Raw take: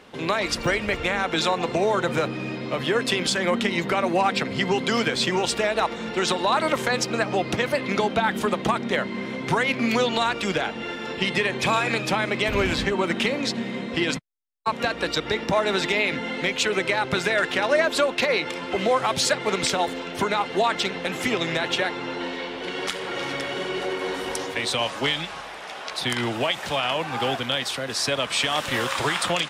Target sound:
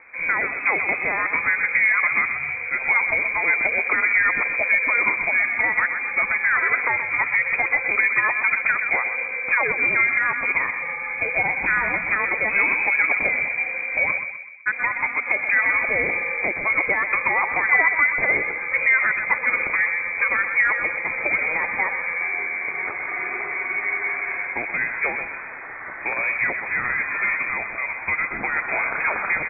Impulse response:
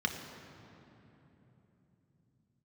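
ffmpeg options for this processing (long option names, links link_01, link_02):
-filter_complex "[0:a]equalizer=frequency=350:width_type=o:width=1.7:gain=4,asplit=2[link_01][link_02];[link_02]adelay=126,lowpass=frequency=1800:poles=1,volume=-7dB,asplit=2[link_03][link_04];[link_04]adelay=126,lowpass=frequency=1800:poles=1,volume=0.52,asplit=2[link_05][link_06];[link_06]adelay=126,lowpass=frequency=1800:poles=1,volume=0.52,asplit=2[link_07][link_08];[link_08]adelay=126,lowpass=frequency=1800:poles=1,volume=0.52,asplit=2[link_09][link_10];[link_10]adelay=126,lowpass=frequency=1800:poles=1,volume=0.52,asplit=2[link_11][link_12];[link_12]adelay=126,lowpass=frequency=1800:poles=1,volume=0.52[link_13];[link_01][link_03][link_05][link_07][link_09][link_11][link_13]amix=inputs=7:normalize=0,lowpass=frequency=2200:width_type=q:width=0.5098,lowpass=frequency=2200:width_type=q:width=0.6013,lowpass=frequency=2200:width_type=q:width=0.9,lowpass=frequency=2200:width_type=q:width=2.563,afreqshift=-2600"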